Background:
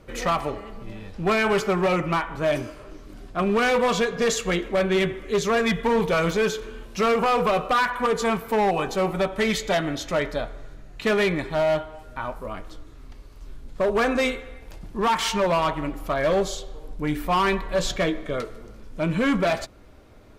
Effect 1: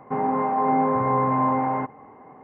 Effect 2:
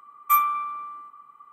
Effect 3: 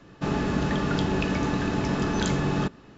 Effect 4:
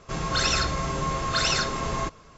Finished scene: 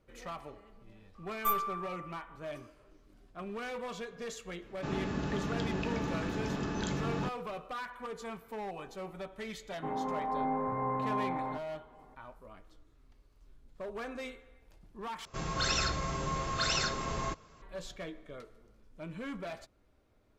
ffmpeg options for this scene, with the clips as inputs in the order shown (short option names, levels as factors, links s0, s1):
-filter_complex "[0:a]volume=0.112[s0];[2:a]aeval=exprs='(tanh(4.47*val(0)+0.65)-tanh(0.65))/4.47':c=same[s1];[s0]asplit=2[s2][s3];[s2]atrim=end=15.254[s4];[4:a]atrim=end=2.37,asetpts=PTS-STARTPTS,volume=0.447[s5];[s3]atrim=start=17.616[s6];[s1]atrim=end=1.52,asetpts=PTS-STARTPTS,volume=0.447,afade=t=in:d=0.004:c=hsin,afade=t=out:st=1.516:d=0.004:c=hsin,adelay=1150[s7];[3:a]atrim=end=2.97,asetpts=PTS-STARTPTS,volume=0.335,afade=t=in:d=0.004:c=hsin,afade=t=out:st=2.966:d=0.004:c=hsin,adelay=203301S[s8];[1:a]atrim=end=2.43,asetpts=PTS-STARTPTS,volume=0.251,afade=t=in:d=0.004:c=hsin,afade=t=out:st=2.426:d=0.004:c=hsin,adelay=9720[s9];[s4][s5]acrossfade=d=0.004:c1=hsin:c2=hsin[s10];[s10][s6]acrossfade=d=0.004:c1=hsin:c2=hsin[s11];[s11][s7][s8][s9]amix=inputs=4:normalize=0"